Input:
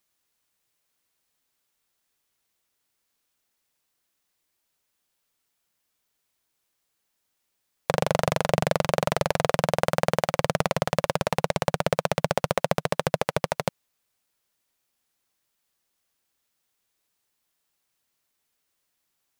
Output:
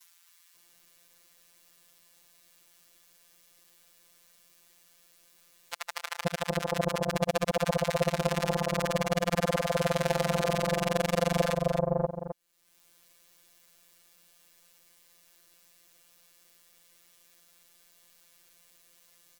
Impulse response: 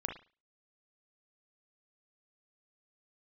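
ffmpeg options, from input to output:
-filter_complex "[0:a]areverse,acrossover=split=970[link_01][link_02];[link_01]adelay=530[link_03];[link_03][link_02]amix=inputs=2:normalize=0,afftfilt=real='hypot(re,im)*cos(PI*b)':imag='0':win_size=1024:overlap=0.75,acompressor=mode=upward:threshold=-40dB:ratio=2.5,asplit=2[link_04][link_05];[link_05]aecho=0:1:263:0.376[link_06];[link_04][link_06]amix=inputs=2:normalize=0"

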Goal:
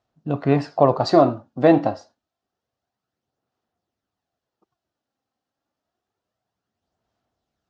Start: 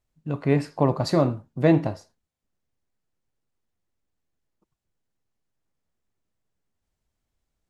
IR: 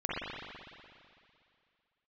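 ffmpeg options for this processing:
-af "aphaser=in_gain=1:out_gain=1:delay=3.8:decay=0.35:speed=0.28:type=sinusoidal,highpass=120,equalizer=frequency=160:width_type=q:width=4:gain=-5,equalizer=frequency=710:width_type=q:width=4:gain=9,equalizer=frequency=1300:width_type=q:width=4:gain=4,equalizer=frequency=2200:width_type=q:width=4:gain=-6,lowpass=frequency=5900:width=0.5412,lowpass=frequency=5900:width=1.3066,volume=3.5dB"

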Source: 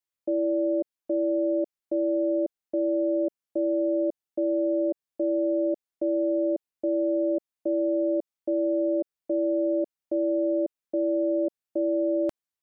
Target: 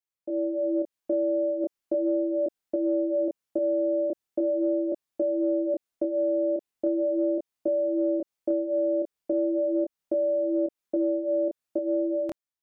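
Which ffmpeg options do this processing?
ffmpeg -i in.wav -af "dynaudnorm=framelen=160:gausssize=9:maxgain=9dB,flanger=delay=22.5:depth=6.8:speed=0.39,acompressor=threshold=-21dB:ratio=6,volume=-1.5dB" out.wav

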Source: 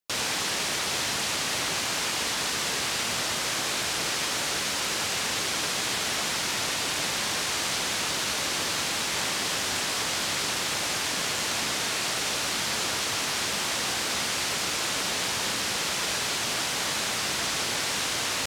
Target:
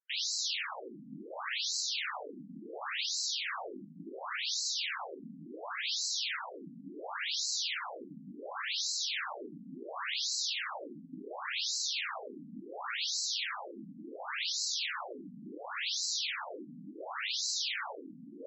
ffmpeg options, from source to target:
ffmpeg -i in.wav -af "areverse,acompressor=mode=upward:threshold=-44dB:ratio=2.5,areverse,bandreject=frequency=45.4:width_type=h:width=4,bandreject=frequency=90.8:width_type=h:width=4,bandreject=frequency=136.2:width_type=h:width=4,bandreject=frequency=181.6:width_type=h:width=4,bandreject=frequency=227:width_type=h:width=4,bandreject=frequency=272.4:width_type=h:width=4,bandreject=frequency=317.8:width_type=h:width=4,bandreject=frequency=363.2:width_type=h:width=4,bandreject=frequency=408.6:width_type=h:width=4,bandreject=frequency=454:width_type=h:width=4,bandreject=frequency=499.4:width_type=h:width=4,bandreject=frequency=544.8:width_type=h:width=4,bandreject=frequency=590.2:width_type=h:width=4,bandreject=frequency=635.6:width_type=h:width=4,bandreject=frequency=681:width_type=h:width=4,bandreject=frequency=726.4:width_type=h:width=4,bandreject=frequency=771.8:width_type=h:width=4,bandreject=frequency=817.2:width_type=h:width=4,bandreject=frequency=862.6:width_type=h:width=4,bandreject=frequency=908:width_type=h:width=4,bandreject=frequency=953.4:width_type=h:width=4,afftfilt=real='re*between(b*sr/1024,200*pow(5600/200,0.5+0.5*sin(2*PI*0.7*pts/sr))/1.41,200*pow(5600/200,0.5+0.5*sin(2*PI*0.7*pts/sr))*1.41)':imag='im*between(b*sr/1024,200*pow(5600/200,0.5+0.5*sin(2*PI*0.7*pts/sr))/1.41,200*pow(5600/200,0.5+0.5*sin(2*PI*0.7*pts/sr))*1.41)':win_size=1024:overlap=0.75,volume=-1.5dB" out.wav

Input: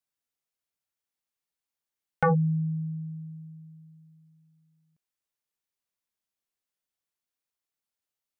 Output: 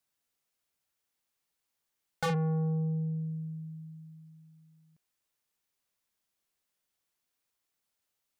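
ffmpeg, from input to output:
ffmpeg -i in.wav -af "asoftclip=type=tanh:threshold=-34dB,volume=6dB" out.wav

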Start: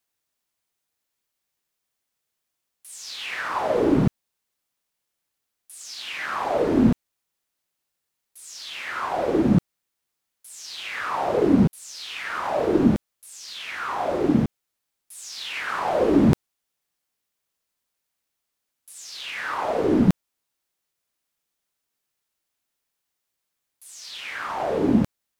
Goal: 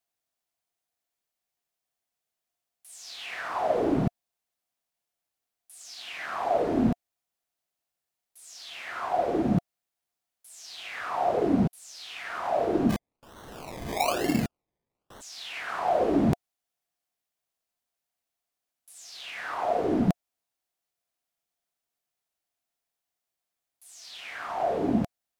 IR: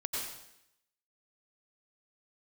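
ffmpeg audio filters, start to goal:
-filter_complex "[0:a]equalizer=frequency=700:width_type=o:width=0.26:gain=11,asplit=3[link_01][link_02][link_03];[link_01]afade=type=out:start_time=12.89:duration=0.02[link_04];[link_02]acrusher=samples=25:mix=1:aa=0.000001:lfo=1:lforange=15:lforate=1.1,afade=type=in:start_time=12.89:duration=0.02,afade=type=out:start_time=15.2:duration=0.02[link_05];[link_03]afade=type=in:start_time=15.2:duration=0.02[link_06];[link_04][link_05][link_06]amix=inputs=3:normalize=0,volume=-6.5dB"

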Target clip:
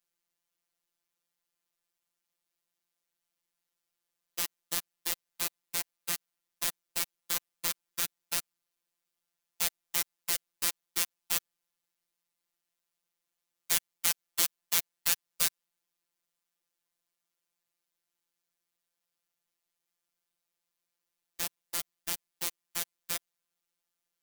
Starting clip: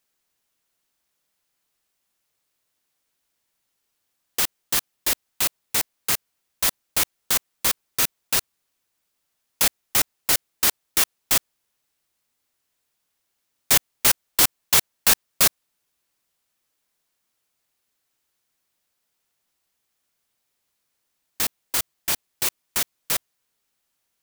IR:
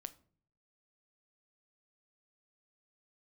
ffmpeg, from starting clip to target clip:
-filter_complex "[0:a]acrossover=split=1500[link_01][link_02];[link_01]alimiter=level_in=0.5dB:limit=-24dB:level=0:latency=1:release=129,volume=-0.5dB[link_03];[link_03][link_02]amix=inputs=2:normalize=0,afftfilt=real='hypot(re,im)*cos(PI*b)':imag='0':win_size=1024:overlap=0.75,volume=-7dB"

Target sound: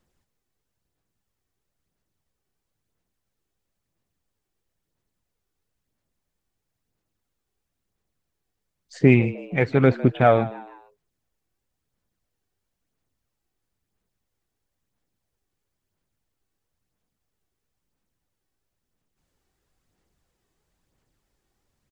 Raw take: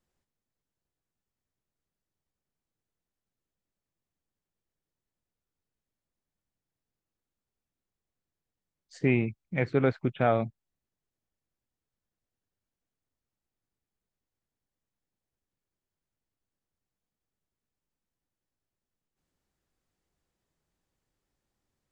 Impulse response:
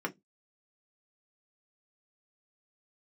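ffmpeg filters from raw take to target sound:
-filter_complex "[0:a]aphaser=in_gain=1:out_gain=1:delay=2.7:decay=0.35:speed=1:type=sinusoidal,asplit=4[link_01][link_02][link_03][link_04];[link_02]adelay=154,afreqshift=100,volume=-18dB[link_05];[link_03]adelay=308,afreqshift=200,volume=-25.7dB[link_06];[link_04]adelay=462,afreqshift=300,volume=-33.5dB[link_07];[link_01][link_05][link_06][link_07]amix=inputs=4:normalize=0,volume=7dB"

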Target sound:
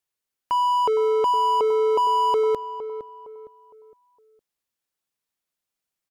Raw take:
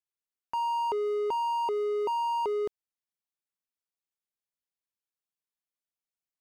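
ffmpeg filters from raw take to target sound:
ffmpeg -i in.wav -filter_complex "[0:a]asplit=2[link_01][link_02];[link_02]adelay=484,lowpass=frequency=1400:poles=1,volume=-11.5dB,asplit=2[link_03][link_04];[link_04]adelay=484,lowpass=frequency=1400:poles=1,volume=0.38,asplit=2[link_05][link_06];[link_06]adelay=484,lowpass=frequency=1400:poles=1,volume=0.38,asplit=2[link_07][link_08];[link_08]adelay=484,lowpass=frequency=1400:poles=1,volume=0.38[link_09];[link_01][link_03][link_05][link_07][link_09]amix=inputs=5:normalize=0,asetrate=46305,aresample=44100,volume=8.5dB" out.wav

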